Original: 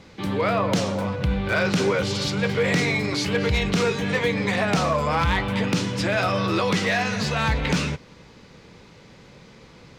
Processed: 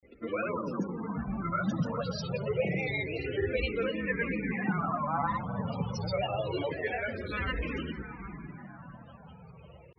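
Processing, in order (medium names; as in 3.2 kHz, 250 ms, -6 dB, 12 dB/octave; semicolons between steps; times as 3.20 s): echo that smears into a reverb 680 ms, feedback 55%, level -11 dB; loudest bins only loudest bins 32; hum notches 50/100/150/200 Hz; granulator 100 ms, grains 20 per s, pitch spread up and down by 3 st; barber-pole phaser -0.28 Hz; trim -4.5 dB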